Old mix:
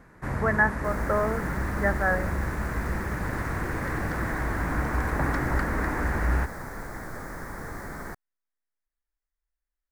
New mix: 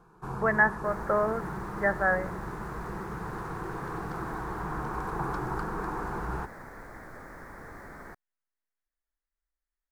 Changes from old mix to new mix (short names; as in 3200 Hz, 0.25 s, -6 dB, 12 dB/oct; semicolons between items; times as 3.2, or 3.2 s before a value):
first sound: add fixed phaser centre 390 Hz, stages 8; second sound -6.5 dB; master: add tone controls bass -4 dB, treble -7 dB